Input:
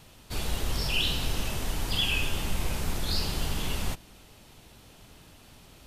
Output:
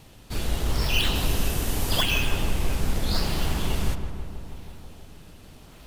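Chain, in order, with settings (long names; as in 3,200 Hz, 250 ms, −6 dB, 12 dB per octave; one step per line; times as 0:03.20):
0:01.14–0:02.01: high-shelf EQ 9,900 Hz → 5,800 Hz +10.5 dB
in parallel at −4 dB: sample-and-hold swept by an LFO 23×, swing 160% 0.81 Hz
on the sum: feedback echo with a low-pass in the loop 162 ms, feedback 73%, low-pass 2,200 Hz, level −8.5 dB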